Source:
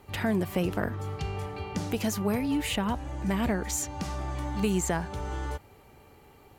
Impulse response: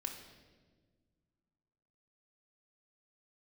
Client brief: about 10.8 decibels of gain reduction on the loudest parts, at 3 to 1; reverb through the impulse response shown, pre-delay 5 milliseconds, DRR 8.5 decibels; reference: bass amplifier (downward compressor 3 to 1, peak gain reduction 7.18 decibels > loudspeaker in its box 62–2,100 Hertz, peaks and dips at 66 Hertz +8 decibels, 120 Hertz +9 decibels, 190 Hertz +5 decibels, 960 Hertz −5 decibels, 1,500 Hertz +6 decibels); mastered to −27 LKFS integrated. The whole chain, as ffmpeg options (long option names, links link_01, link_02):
-filter_complex "[0:a]acompressor=threshold=-38dB:ratio=3,asplit=2[link_01][link_02];[1:a]atrim=start_sample=2205,adelay=5[link_03];[link_02][link_03]afir=irnorm=-1:irlink=0,volume=-7.5dB[link_04];[link_01][link_04]amix=inputs=2:normalize=0,acompressor=threshold=-40dB:ratio=3,highpass=frequency=62:width=0.5412,highpass=frequency=62:width=1.3066,equalizer=frequency=66:width_type=q:width=4:gain=8,equalizer=frequency=120:width_type=q:width=4:gain=9,equalizer=frequency=190:width_type=q:width=4:gain=5,equalizer=frequency=960:width_type=q:width=4:gain=-5,equalizer=frequency=1500:width_type=q:width=4:gain=6,lowpass=frequency=2100:width=0.5412,lowpass=frequency=2100:width=1.3066,volume=14dB"